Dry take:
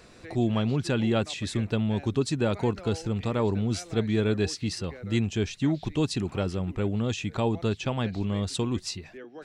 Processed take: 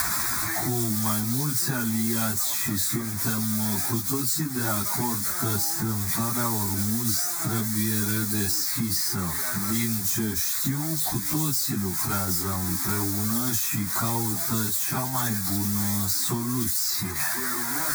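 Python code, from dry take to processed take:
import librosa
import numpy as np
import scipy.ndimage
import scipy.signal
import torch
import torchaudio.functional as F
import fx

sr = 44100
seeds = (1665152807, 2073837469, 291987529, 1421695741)

y = x + 0.5 * 10.0 ** (-20.5 / 20.0) * np.diff(np.sign(x), prepend=np.sign(x[:1]))
y = fx.highpass(y, sr, hz=180.0, slope=6)
y = fx.fixed_phaser(y, sr, hz=1200.0, stages=4)
y = fx.stretch_vocoder_free(y, sr, factor=1.9)
y = fx.band_squash(y, sr, depth_pct=100)
y = y * 10.0 ** (6.5 / 20.0)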